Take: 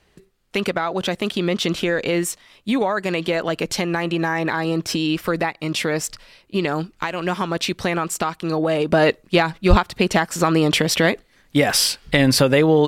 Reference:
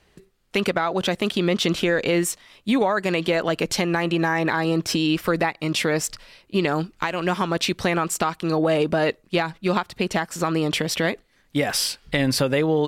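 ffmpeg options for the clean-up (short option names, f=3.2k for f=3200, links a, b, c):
-filter_complex "[0:a]asplit=3[a][b][c];[a]afade=t=out:st=9.69:d=0.02[d];[b]highpass=f=140:w=0.5412,highpass=f=140:w=1.3066,afade=t=in:st=9.69:d=0.02,afade=t=out:st=9.81:d=0.02[e];[c]afade=t=in:st=9.81:d=0.02[f];[d][e][f]amix=inputs=3:normalize=0,asetnsamples=n=441:p=0,asendcmd='8.92 volume volume -5.5dB',volume=0dB"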